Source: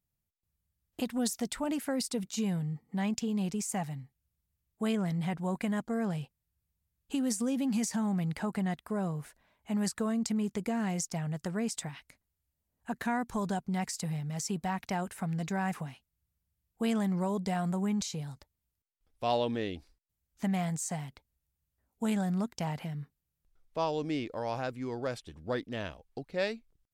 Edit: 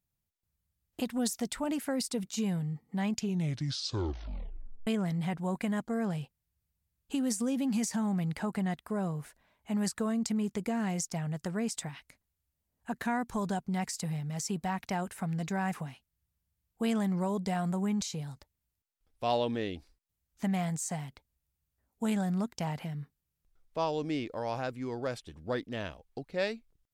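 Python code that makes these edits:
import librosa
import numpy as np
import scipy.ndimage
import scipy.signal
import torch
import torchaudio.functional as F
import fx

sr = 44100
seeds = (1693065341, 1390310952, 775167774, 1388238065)

y = fx.edit(x, sr, fx.tape_stop(start_s=3.11, length_s=1.76), tone=tone)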